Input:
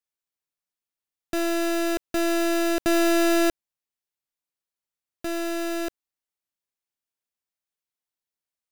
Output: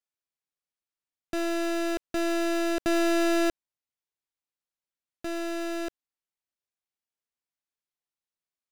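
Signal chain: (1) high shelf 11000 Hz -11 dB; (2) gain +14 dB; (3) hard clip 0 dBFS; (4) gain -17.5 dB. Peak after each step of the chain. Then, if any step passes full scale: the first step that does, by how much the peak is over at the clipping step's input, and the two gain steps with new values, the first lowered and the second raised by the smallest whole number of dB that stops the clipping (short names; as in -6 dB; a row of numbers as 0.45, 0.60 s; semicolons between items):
-19.5, -5.5, -5.5, -23.0 dBFS; no overload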